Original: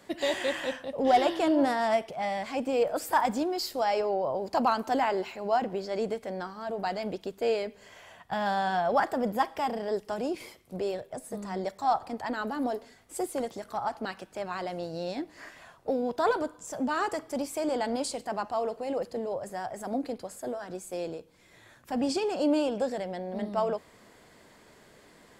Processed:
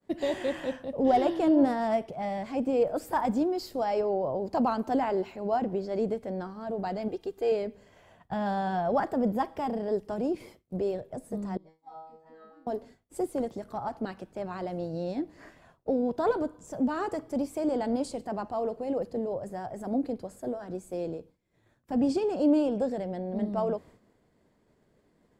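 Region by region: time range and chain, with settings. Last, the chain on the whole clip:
7.08–7.52 s: bass shelf 420 Hz -7.5 dB + comb 2.5 ms + upward compressor, threshold -42 dBFS
11.57–12.67 s: low-pass 3.7 kHz 6 dB/octave + band-stop 1.1 kHz, Q 19 + feedback comb 160 Hz, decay 0.82 s, mix 100%
whole clip: expander -47 dBFS; tilt shelf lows +7.5 dB, about 670 Hz; trim -1.5 dB

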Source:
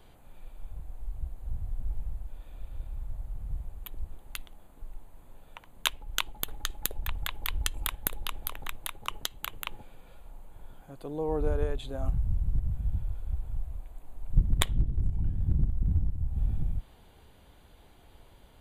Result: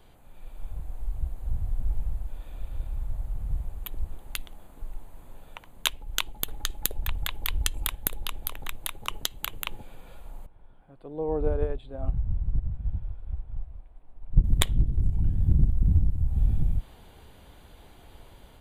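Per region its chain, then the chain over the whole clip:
10.46–14.44 s: boxcar filter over 7 samples + dynamic bell 610 Hz, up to +4 dB, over -41 dBFS, Q 0.74 + upward expansion, over -38 dBFS
whole clip: level rider gain up to 5.5 dB; dynamic bell 1.2 kHz, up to -4 dB, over -46 dBFS, Q 0.73

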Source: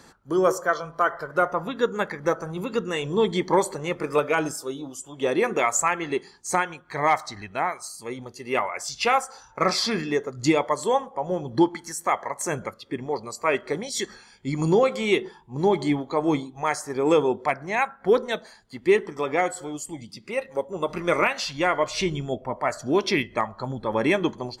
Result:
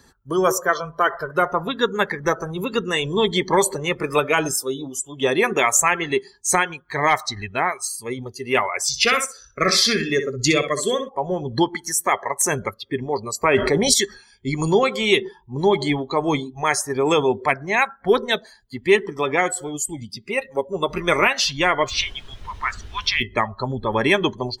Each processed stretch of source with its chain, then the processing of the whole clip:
8.87–11.09 s: Butterworth band-stop 870 Hz, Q 1.7 + feedback delay 63 ms, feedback 19%, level -9 dB
13.43–13.94 s: tilt shelf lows +4.5 dB, about 920 Hz + level flattener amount 70%
21.89–23.20 s: elliptic band-pass 1.1–9 kHz + added noise pink -44 dBFS + distance through air 82 m
whole clip: expander on every frequency bin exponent 1.5; peaking EQ 400 Hz +12.5 dB 0.23 oct; spectrum-flattening compressor 2:1; trim -1 dB

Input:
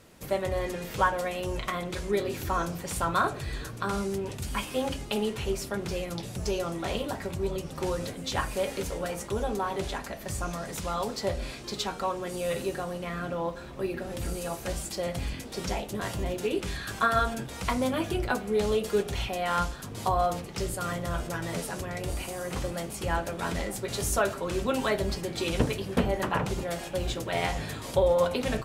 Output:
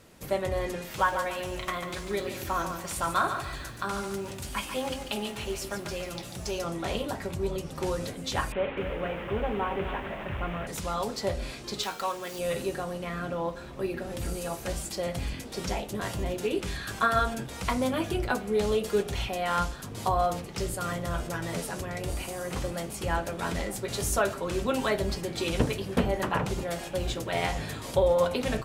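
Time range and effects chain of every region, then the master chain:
0.81–6.64 s: bass shelf 350 Hz -6 dB + band-stop 450 Hz, Q 6.6 + bit-crushed delay 143 ms, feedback 35%, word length 9-bit, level -7.5 dB
8.52–10.67 s: one-bit delta coder 16 kbps, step -33 dBFS + bit-crushed delay 257 ms, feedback 35%, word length 9-bit, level -10 dB
11.83–12.39 s: median filter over 5 samples + tilt EQ +3 dB/octave
whole clip: none

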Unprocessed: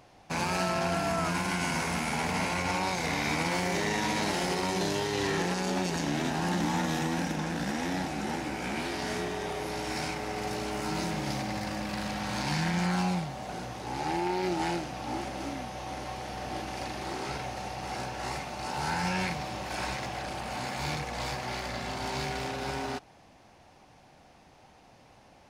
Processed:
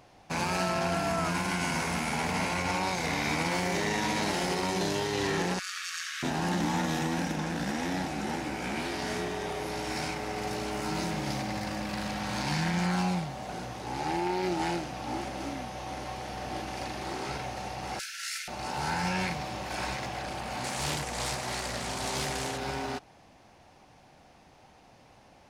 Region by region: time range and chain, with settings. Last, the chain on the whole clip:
5.59–6.23 s: brick-wall FIR high-pass 1.1 kHz + flutter echo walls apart 12 m, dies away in 0.71 s
17.99–18.48 s: brick-wall FIR high-pass 1.3 kHz + treble shelf 4.1 kHz +11 dB
20.64–22.58 s: peaking EQ 8.6 kHz +13 dB 1 oct + loudspeaker Doppler distortion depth 0.53 ms
whole clip: none

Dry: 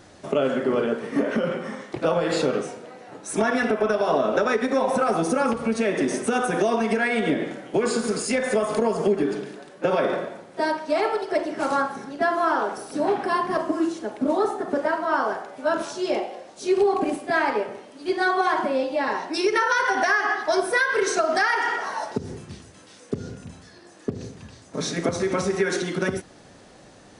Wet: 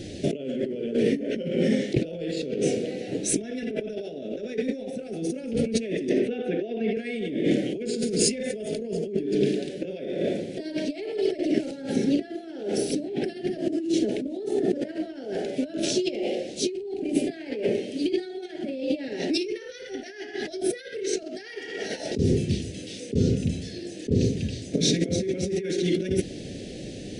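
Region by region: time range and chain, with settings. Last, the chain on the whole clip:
6.09–6.97 s: high-pass 450 Hz 6 dB/octave + distance through air 370 m
whole clip: treble shelf 4.9 kHz -9.5 dB; compressor with a negative ratio -33 dBFS, ratio -1; Chebyshev band-stop 420–2800 Hz, order 2; trim +7.5 dB

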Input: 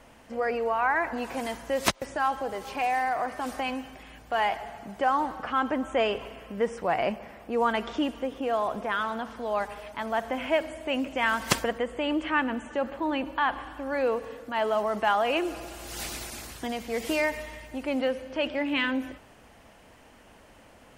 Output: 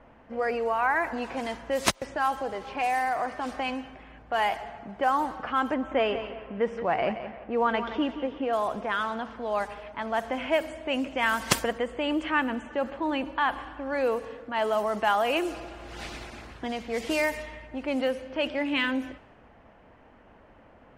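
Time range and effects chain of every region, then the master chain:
5.74–8.53 s: low-pass 3.3 kHz + feedback delay 174 ms, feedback 36%, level -11 dB
whole clip: level-controlled noise filter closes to 1.6 kHz, open at -21.5 dBFS; treble shelf 10 kHz +10.5 dB

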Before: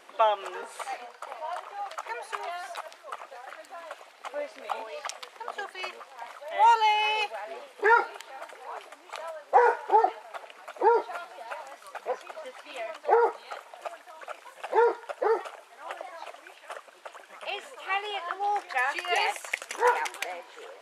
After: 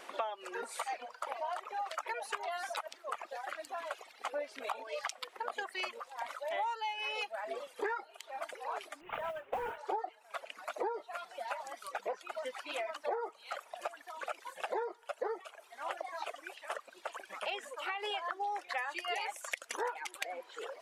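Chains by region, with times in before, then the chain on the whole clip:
9.01–9.78 s: CVSD coder 16 kbps + compression 5:1, threshold -25 dBFS + modulation noise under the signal 28 dB
17.65–18.11 s: compression 4:1, threshold -31 dBFS + tape noise reduction on one side only decoder only
whole clip: reverb removal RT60 1 s; compression 10:1, threshold -37 dBFS; trim +3 dB

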